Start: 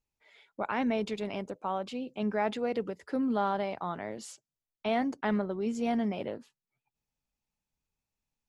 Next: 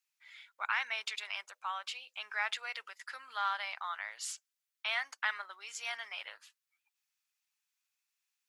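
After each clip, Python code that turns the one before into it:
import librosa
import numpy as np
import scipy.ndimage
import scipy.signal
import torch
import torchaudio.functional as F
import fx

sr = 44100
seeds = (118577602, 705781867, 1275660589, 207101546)

y = scipy.signal.sosfilt(scipy.signal.butter(4, 1300.0, 'highpass', fs=sr, output='sos'), x)
y = F.gain(torch.from_numpy(y), 6.0).numpy()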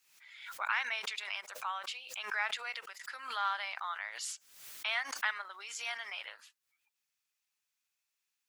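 y = fx.pre_swell(x, sr, db_per_s=74.0)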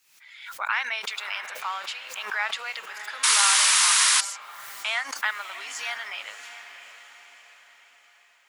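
y = fx.echo_diffused(x, sr, ms=651, feedback_pct=48, wet_db=-11.0)
y = fx.spec_paint(y, sr, seeds[0], shape='noise', start_s=3.23, length_s=0.98, low_hz=900.0, high_hz=11000.0, level_db=-26.0)
y = F.gain(torch.from_numpy(y), 6.5).numpy()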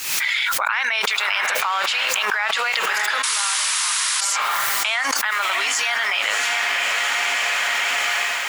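y = fx.env_flatten(x, sr, amount_pct=100)
y = F.gain(torch.from_numpy(y), -3.0).numpy()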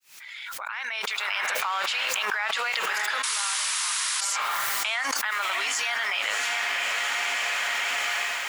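y = fx.fade_in_head(x, sr, length_s=1.49)
y = F.gain(torch.from_numpy(y), -6.0).numpy()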